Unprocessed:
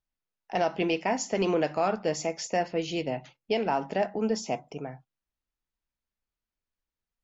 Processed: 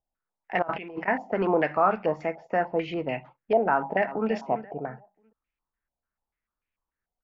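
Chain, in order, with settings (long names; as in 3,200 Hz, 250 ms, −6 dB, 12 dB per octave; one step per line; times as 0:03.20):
0:00.62–0:01.08: compressor whose output falls as the input rises −38 dBFS, ratio −1
0:03.73–0:04.30: delay throw 340 ms, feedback 25%, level −12.5 dB
low-pass on a step sequencer 6.8 Hz 740–2,400 Hz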